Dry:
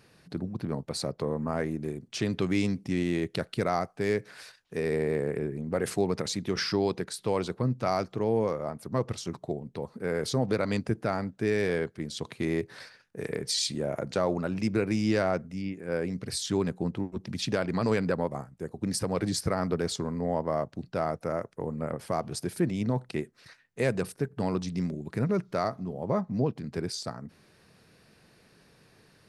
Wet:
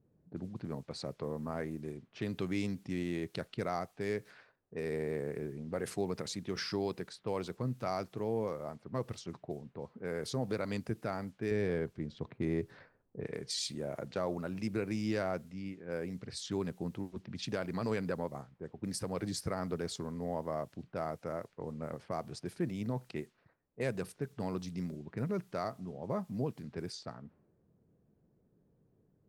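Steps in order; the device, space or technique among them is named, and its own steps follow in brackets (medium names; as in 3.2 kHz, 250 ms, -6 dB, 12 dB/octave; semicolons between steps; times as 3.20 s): cassette deck with a dynamic noise filter (white noise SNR 32 dB; level-controlled noise filter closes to 350 Hz, open at -27.5 dBFS); 11.51–13.27 s: tilt EQ -2 dB/octave; trim -8 dB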